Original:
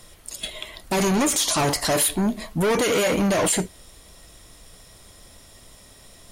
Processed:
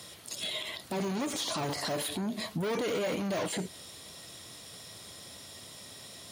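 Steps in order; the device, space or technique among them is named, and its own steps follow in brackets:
broadcast voice chain (high-pass filter 95 Hz 24 dB per octave; de-essing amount 70%; downward compressor 3 to 1, threshold −25 dBFS, peak gain reduction 6.5 dB; parametric band 4,000 Hz +6 dB 1 octave; brickwall limiter −25 dBFS, peak gain reduction 10.5 dB)

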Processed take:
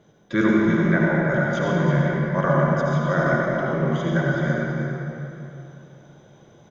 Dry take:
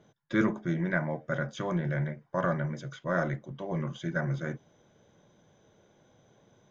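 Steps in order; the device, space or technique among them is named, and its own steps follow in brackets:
cave (single-tap delay 332 ms −9.5 dB; convolution reverb RT60 3.1 s, pre-delay 67 ms, DRR −3.5 dB)
level +4.5 dB

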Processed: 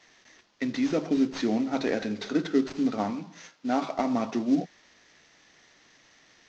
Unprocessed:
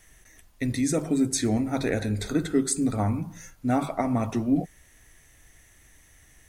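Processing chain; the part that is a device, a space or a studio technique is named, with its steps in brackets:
early wireless headset (high-pass filter 190 Hz 24 dB per octave; variable-slope delta modulation 32 kbit/s)
0:03.10–0:03.94: low-shelf EQ 130 Hz −11.5 dB

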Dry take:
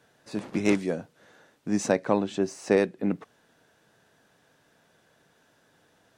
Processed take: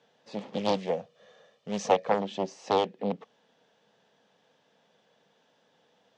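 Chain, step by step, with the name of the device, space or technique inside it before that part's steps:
0:00.76–0:02.12: comb filter 1.7 ms, depth 70%
full-range speaker at full volume (highs frequency-modulated by the lows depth 0.98 ms; loudspeaker in its box 180–6,300 Hz, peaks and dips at 200 Hz +5 dB, 330 Hz −7 dB, 490 Hz +6 dB, 840 Hz +4 dB, 1,500 Hz −6 dB, 3,200 Hz +6 dB)
level −4 dB

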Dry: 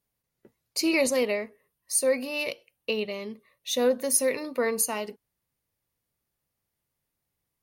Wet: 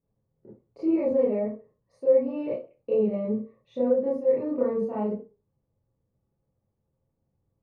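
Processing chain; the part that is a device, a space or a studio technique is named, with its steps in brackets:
television next door (downward compressor 4 to 1, threshold −30 dBFS, peak gain reduction 10.5 dB; low-pass filter 510 Hz 12 dB per octave; convolution reverb RT60 0.30 s, pre-delay 25 ms, DRR −8.5 dB)
level +2 dB

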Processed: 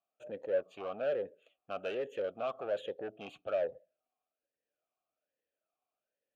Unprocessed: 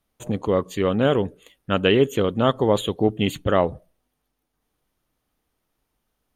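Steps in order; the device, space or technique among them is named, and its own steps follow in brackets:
talk box (tube saturation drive 21 dB, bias 0.5; formant filter swept between two vowels a-e 1.2 Hz)

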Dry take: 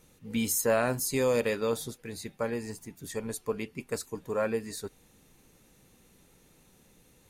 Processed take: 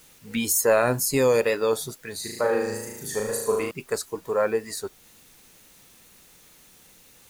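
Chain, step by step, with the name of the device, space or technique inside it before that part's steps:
noise reduction from a noise print of the clip's start 8 dB
0:02.16–0:03.71: flutter between parallel walls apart 6.4 metres, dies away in 0.88 s
noise-reduction cassette on a plain deck (one half of a high-frequency compander encoder only; tape wow and flutter; white noise bed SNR 30 dB)
level +6.5 dB

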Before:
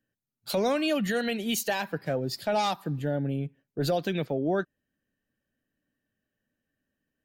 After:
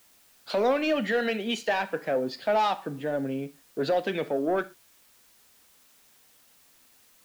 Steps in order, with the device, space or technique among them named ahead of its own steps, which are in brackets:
tape answering machine (band-pass filter 320–3,000 Hz; soft clipping −21.5 dBFS, distortion −19 dB; tape wow and flutter; white noise bed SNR 30 dB)
reverb whose tail is shaped and stops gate 140 ms falling, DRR 11.5 dB
level +4.5 dB

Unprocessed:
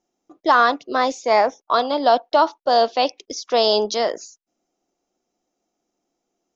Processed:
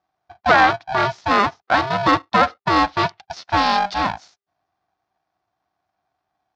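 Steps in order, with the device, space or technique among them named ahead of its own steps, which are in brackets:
ring modulator pedal into a guitar cabinet (ring modulator with a square carrier 400 Hz; loudspeaker in its box 89–4,500 Hz, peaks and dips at 130 Hz −4 dB, 240 Hz −5 dB, 440 Hz −4 dB, 740 Hz +9 dB, 1,400 Hz +4 dB, 2,900 Hz −4 dB)
level −1 dB

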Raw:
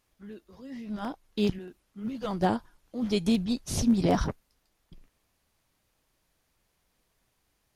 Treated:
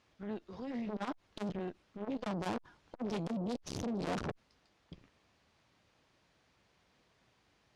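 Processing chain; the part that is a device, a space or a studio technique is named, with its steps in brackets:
valve radio (band-pass filter 81–4,800 Hz; tube saturation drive 39 dB, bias 0.65; saturating transformer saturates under 450 Hz)
low-pass filter 9,900 Hz
level +8.5 dB

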